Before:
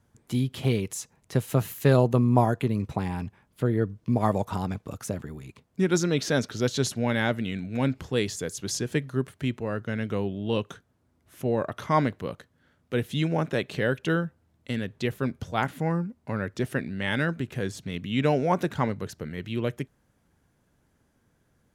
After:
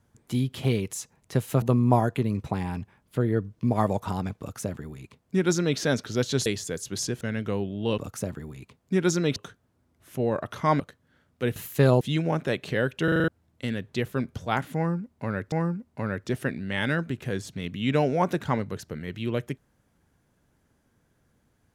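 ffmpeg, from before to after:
-filter_complex "[0:a]asplit=16[a][b][c][d][e][f][g][h][i][j][k][l][m][n][o][p];[a]atrim=end=1.622[q];[b]atrim=start=2.068:end=6.912[r];[c]atrim=start=8.178:end=8.932[s];[d]atrim=start=9.848:end=10.622[t];[e]atrim=start=4.848:end=6.232[u];[f]atrim=start=10.618:end=12.062[v];[g]atrim=start=12.308:end=13.072[w];[h]atrim=start=1.618:end=2.072[x];[i]atrim=start=13.068:end=14.142[y];[j]atrim=start=14.098:end=14.142[z];[k]atrim=start=14.098:end=14.142[aa];[l]atrim=start=14.098:end=14.142[ab];[m]atrim=start=14.098:end=14.142[ac];[n]atrim=start=14.098:end=14.142[ad];[o]atrim=start=14.338:end=16.582[ae];[p]atrim=start=15.818[af];[q][r]acrossfade=d=0.004:c1=hsin:c2=hsin[ag];[ag][s]acrossfade=d=0.004:c1=hsin:c2=hsin[ah];[ah][t]acrossfade=d=0.004:c1=hsin:c2=hsin[ai];[ai][u]acrossfade=d=0.004:c1=hsin:c2=hsin[aj];[aj][v]acrossfade=d=0.004:c1=hsin:c2=hsin[ak];[ak][w]acrossfade=d=0.004:c1=hsin:c2=hsin[al];[al][x]acrossfade=d=0.004:c1=hsin:c2=hsin[am];[am][y]acrossfade=d=0.004:c1=hsin:c2=hsin[an];[an][z]acrossfade=d=0.004:c1=hsin:c2=hsin[ao];[ao][aa]acrossfade=d=0.004:c1=hsin:c2=hsin[ap];[ap][ab]acrossfade=d=0.004:c1=hsin:c2=hsin[aq];[aq][ac]acrossfade=d=0.004:c1=hsin:c2=hsin[ar];[ar][ad]acrossfade=d=0.004:c1=hsin:c2=hsin[as];[as][ae]acrossfade=d=0.004:c1=hsin:c2=hsin[at];[at][af]acrossfade=d=0.004:c1=hsin:c2=hsin"

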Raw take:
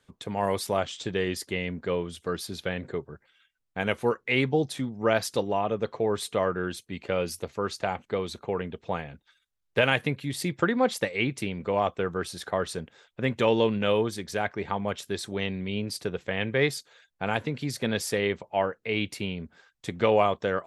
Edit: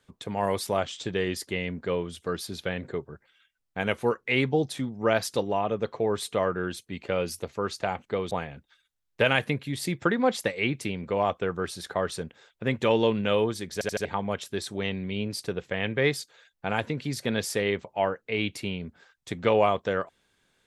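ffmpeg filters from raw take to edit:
-filter_complex "[0:a]asplit=6[a][b][c][d][e][f];[a]atrim=end=8.312[g];[b]atrim=start=8.878:end=14.382[h];[c]atrim=start=14.298:end=14.382[i];[d]atrim=start=14.298:end=14.382[j];[e]atrim=start=14.298:end=14.382[k];[f]atrim=start=14.618[l];[g][h]acrossfade=d=0.004:c1=hsin:c2=hsin[m];[m][i]acrossfade=d=0.004:c1=hsin:c2=hsin[n];[n][j]acrossfade=d=0.004:c1=hsin:c2=hsin[o];[o][k]acrossfade=d=0.004:c1=hsin:c2=hsin[p];[p][l]acrossfade=d=0.004:c1=hsin:c2=hsin"

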